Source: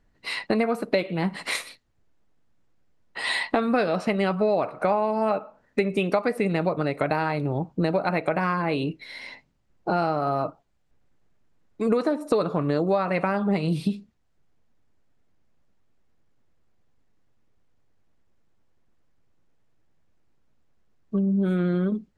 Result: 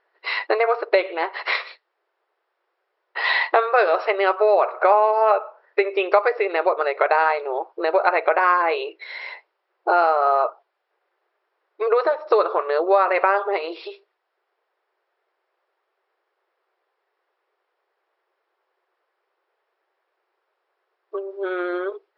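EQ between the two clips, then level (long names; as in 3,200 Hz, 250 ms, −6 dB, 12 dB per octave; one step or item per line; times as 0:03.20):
linear-phase brick-wall band-pass 340–5,600 Hz
high-frequency loss of the air 98 metres
parametric band 1,200 Hz +7.5 dB 1.9 octaves
+3.0 dB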